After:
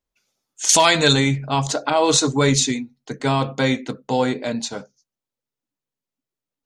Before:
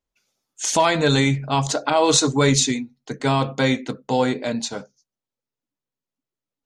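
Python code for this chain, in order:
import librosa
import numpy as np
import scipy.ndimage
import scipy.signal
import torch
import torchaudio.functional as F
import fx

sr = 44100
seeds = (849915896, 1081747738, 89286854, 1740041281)

y = fx.high_shelf(x, sr, hz=2200.0, db=12.0, at=(0.69, 1.13))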